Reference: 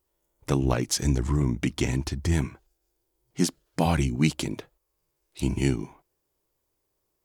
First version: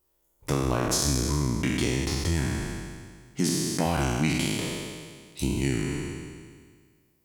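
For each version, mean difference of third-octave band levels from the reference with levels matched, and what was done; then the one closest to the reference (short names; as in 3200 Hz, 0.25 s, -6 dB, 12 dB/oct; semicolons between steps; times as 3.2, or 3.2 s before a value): 9.0 dB: spectral trails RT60 1.75 s; high shelf 12000 Hz +5.5 dB; compressor 2:1, threshold -25 dBFS, peak gain reduction 6 dB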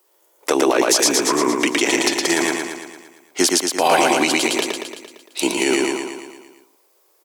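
13.5 dB: HPF 380 Hz 24 dB/oct; on a send: feedback echo 0.114 s, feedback 57%, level -4 dB; on the sum: maximiser +20.5 dB; gain -4 dB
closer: first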